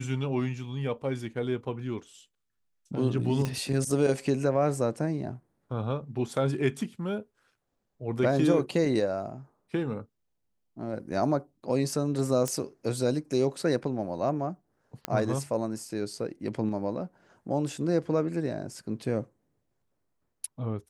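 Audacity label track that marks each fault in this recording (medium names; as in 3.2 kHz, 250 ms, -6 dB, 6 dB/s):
3.450000	3.450000	pop -17 dBFS
12.480000	12.480000	pop -15 dBFS
15.050000	15.050000	pop -13 dBFS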